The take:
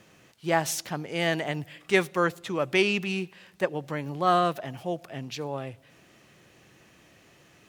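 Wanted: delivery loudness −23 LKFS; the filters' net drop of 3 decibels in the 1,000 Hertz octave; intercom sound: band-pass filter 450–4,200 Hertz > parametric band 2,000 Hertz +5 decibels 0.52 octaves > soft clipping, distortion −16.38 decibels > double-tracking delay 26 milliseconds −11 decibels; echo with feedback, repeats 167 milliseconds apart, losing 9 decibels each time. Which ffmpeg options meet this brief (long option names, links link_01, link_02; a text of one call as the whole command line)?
ffmpeg -i in.wav -filter_complex "[0:a]highpass=450,lowpass=4200,equalizer=frequency=1000:width_type=o:gain=-4.5,equalizer=frequency=2000:width_type=o:width=0.52:gain=5,aecho=1:1:167|334|501|668:0.355|0.124|0.0435|0.0152,asoftclip=threshold=-16.5dB,asplit=2[link_01][link_02];[link_02]adelay=26,volume=-11dB[link_03];[link_01][link_03]amix=inputs=2:normalize=0,volume=7dB" out.wav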